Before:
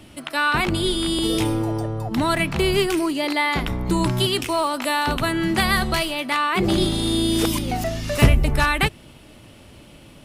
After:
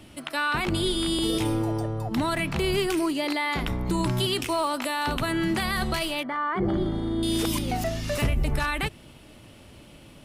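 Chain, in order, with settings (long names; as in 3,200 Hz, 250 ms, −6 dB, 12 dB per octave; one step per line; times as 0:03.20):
brickwall limiter −13 dBFS, peak gain reduction 9 dB
0:06.23–0:07.23: Savitzky-Golay smoothing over 41 samples
level −3 dB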